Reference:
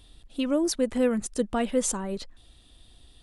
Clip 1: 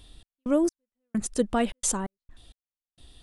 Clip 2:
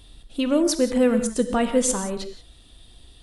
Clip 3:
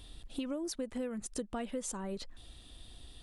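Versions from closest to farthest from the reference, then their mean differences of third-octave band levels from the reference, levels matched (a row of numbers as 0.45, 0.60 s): 2, 3, 1; 2.5, 6.0, 8.5 dB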